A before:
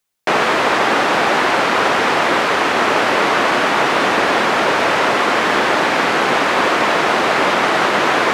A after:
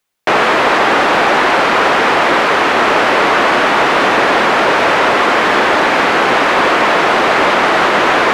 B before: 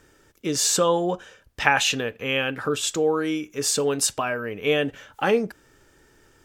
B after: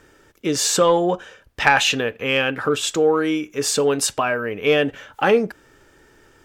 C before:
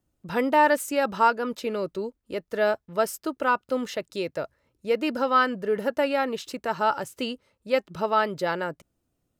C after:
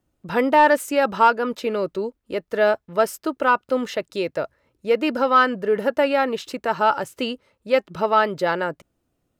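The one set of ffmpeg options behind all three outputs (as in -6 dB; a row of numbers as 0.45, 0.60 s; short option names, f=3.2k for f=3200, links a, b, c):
-af "bass=f=250:g=-3,treble=f=4k:g=-5,acontrast=65,volume=-1dB"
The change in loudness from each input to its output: +4.0, +4.0, +4.5 LU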